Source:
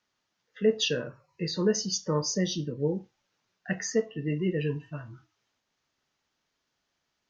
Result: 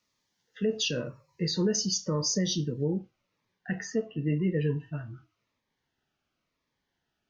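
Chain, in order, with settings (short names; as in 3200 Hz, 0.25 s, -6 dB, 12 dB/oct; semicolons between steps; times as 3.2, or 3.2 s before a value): tone controls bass +2 dB, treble +3 dB, from 2.85 s treble -11 dB; limiter -19.5 dBFS, peak gain reduction 7 dB; cascading phaser falling 0.92 Hz; gain +1.5 dB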